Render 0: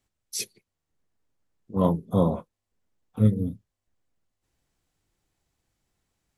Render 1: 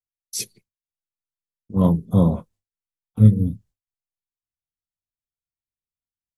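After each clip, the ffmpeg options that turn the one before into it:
-af "agate=range=0.0224:threshold=0.00282:ratio=3:detection=peak,bass=f=250:g=10,treble=f=4000:g=5,volume=0.891"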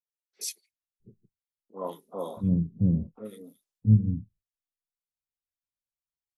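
-filter_complex "[0:a]acrossover=split=370|1700[s0][s1][s2];[s2]adelay=80[s3];[s0]adelay=670[s4];[s4][s1][s3]amix=inputs=3:normalize=0,volume=0.473"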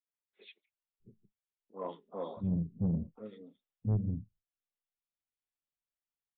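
-af "flanger=delay=1:depth=4:regen=78:speed=1.2:shape=sinusoidal,aresample=8000,asoftclip=type=tanh:threshold=0.0596,aresample=44100"

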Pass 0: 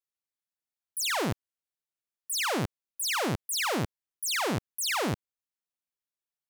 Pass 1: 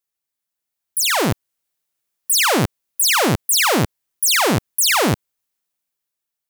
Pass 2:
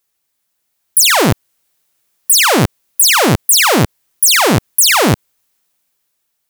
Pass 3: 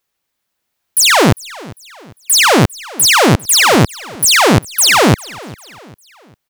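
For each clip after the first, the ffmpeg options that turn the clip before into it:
-af "highshelf=f=8900:g=6.5,dynaudnorm=f=230:g=9:m=2,volume=2"
-af "alimiter=level_in=5.31:limit=0.891:release=50:level=0:latency=1,volume=0.891"
-filter_complex "[0:a]aecho=1:1:400|800|1200:0.0891|0.0383|0.0165,asplit=2[s0][s1];[s1]adynamicsmooth=sensitivity=4.5:basefreq=6100,volume=1.26[s2];[s0][s2]amix=inputs=2:normalize=0,volume=0.562"

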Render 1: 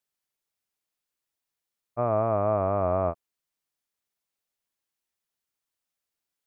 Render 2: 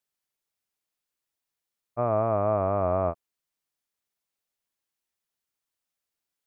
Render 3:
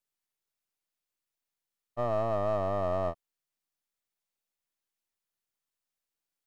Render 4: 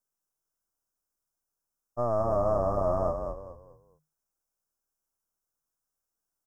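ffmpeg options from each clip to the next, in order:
-af anull
-af "aeval=exprs='if(lt(val(0),0),0.447*val(0),val(0))':c=same,volume=0.891"
-filter_complex "[0:a]asuperstop=centerf=2900:order=20:qfactor=0.84,asplit=2[s0][s1];[s1]asplit=4[s2][s3][s4][s5];[s2]adelay=213,afreqshift=-39,volume=0.501[s6];[s3]adelay=426,afreqshift=-78,volume=0.16[s7];[s4]adelay=639,afreqshift=-117,volume=0.0513[s8];[s5]adelay=852,afreqshift=-156,volume=0.0164[s9];[s6][s7][s8][s9]amix=inputs=4:normalize=0[s10];[s0][s10]amix=inputs=2:normalize=0,volume=1.26"

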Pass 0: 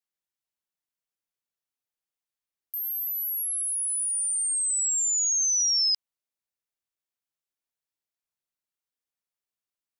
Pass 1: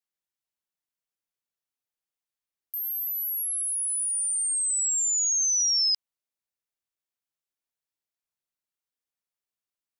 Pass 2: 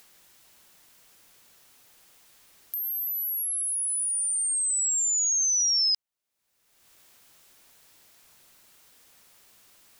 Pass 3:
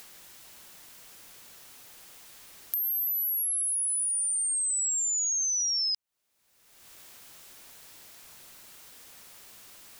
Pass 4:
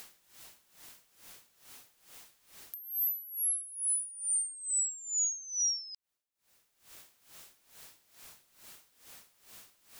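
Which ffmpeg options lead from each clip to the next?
-af anull
-af "acompressor=mode=upward:threshold=0.0282:ratio=2.5"
-af "acompressor=threshold=0.0178:ratio=6,volume=2.24"
-af "aeval=exprs='val(0)*pow(10,-19*(0.5-0.5*cos(2*PI*2.3*n/s))/20)':c=same"

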